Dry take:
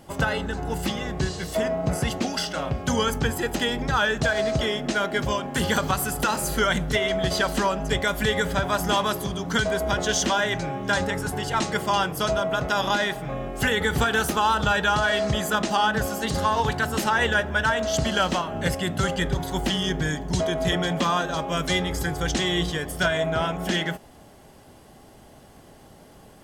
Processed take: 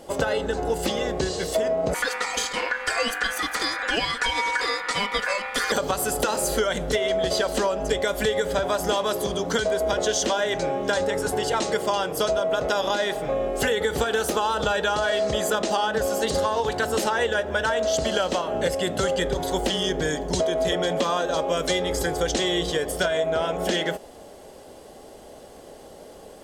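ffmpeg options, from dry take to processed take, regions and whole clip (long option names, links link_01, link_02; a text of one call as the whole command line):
ffmpeg -i in.wav -filter_complex "[0:a]asettb=1/sr,asplit=3[link_01][link_02][link_03];[link_01]atrim=end=1.944[link_04];[link_02]atrim=start=1.94:end=5.72,asetpts=PTS-STARTPTS,afade=type=in:duration=0.004:curve=qsin,afade=type=out:start_time=3.776:duration=0.004:curve=qsin,aeval=exprs='val(0)*sin(2*PI*1600*n/s)':channel_layout=same,aecho=1:1:4.1:0.49,atrim=end_sample=166698[link_05];[link_03]atrim=start=5.716[link_06];[link_04][link_05]acrossfade=duration=0.004:curve1=hsin:curve2=qsin[link_07];[link_07][link_06]acrossfade=duration=0.004:curve1=qsin:curve2=hsin,equalizer=frequency=125:width_type=o:width=1:gain=-7,equalizer=frequency=500:width_type=o:width=1:gain=12,equalizer=frequency=4000:width_type=o:width=1:gain=4,equalizer=frequency=8000:width_type=o:width=1:gain=5,acompressor=threshold=-20dB:ratio=6" out.wav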